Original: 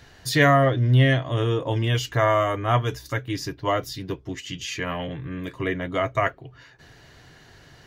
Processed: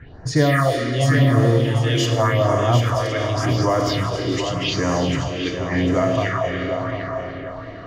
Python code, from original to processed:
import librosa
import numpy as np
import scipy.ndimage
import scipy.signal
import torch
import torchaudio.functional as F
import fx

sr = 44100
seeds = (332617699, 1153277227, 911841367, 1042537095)

p1 = fx.rev_schroeder(x, sr, rt60_s=3.5, comb_ms=26, drr_db=2.0)
p2 = fx.over_compress(p1, sr, threshold_db=-29.0, ratio=-1.0)
p3 = p1 + (p2 * 10.0 ** (-3.0 / 20.0))
p4 = fx.phaser_stages(p3, sr, stages=4, low_hz=140.0, high_hz=3400.0, hz=0.87, feedback_pct=30)
p5 = fx.echo_feedback(p4, sr, ms=747, feedback_pct=31, wet_db=-8.0)
p6 = fx.env_lowpass(p5, sr, base_hz=1400.0, full_db=-15.5)
y = p6 * 10.0 ** (2.0 / 20.0)